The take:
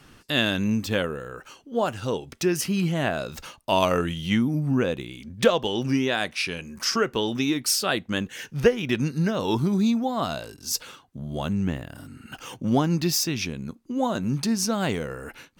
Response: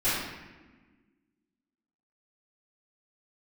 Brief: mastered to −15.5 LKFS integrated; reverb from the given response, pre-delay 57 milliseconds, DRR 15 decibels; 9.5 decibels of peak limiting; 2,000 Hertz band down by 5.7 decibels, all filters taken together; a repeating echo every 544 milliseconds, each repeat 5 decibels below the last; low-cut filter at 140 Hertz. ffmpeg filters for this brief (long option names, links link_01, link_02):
-filter_complex "[0:a]highpass=140,equalizer=frequency=2000:width_type=o:gain=-8,alimiter=limit=-16dB:level=0:latency=1,aecho=1:1:544|1088|1632|2176|2720|3264|3808:0.562|0.315|0.176|0.0988|0.0553|0.031|0.0173,asplit=2[link_01][link_02];[1:a]atrim=start_sample=2205,adelay=57[link_03];[link_02][link_03]afir=irnorm=-1:irlink=0,volume=-27.5dB[link_04];[link_01][link_04]amix=inputs=2:normalize=0,volume=11dB"